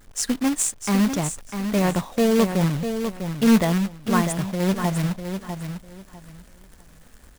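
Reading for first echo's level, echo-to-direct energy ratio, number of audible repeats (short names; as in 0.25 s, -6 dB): -8.0 dB, -8.0 dB, 3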